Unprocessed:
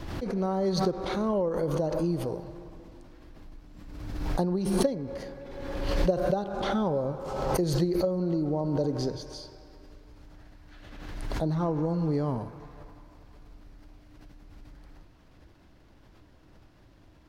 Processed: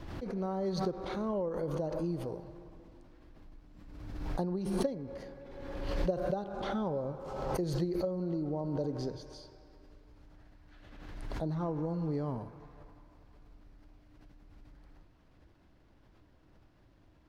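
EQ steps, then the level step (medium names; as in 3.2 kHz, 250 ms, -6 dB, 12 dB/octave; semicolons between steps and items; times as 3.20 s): treble shelf 4.2 kHz -5.5 dB; -6.5 dB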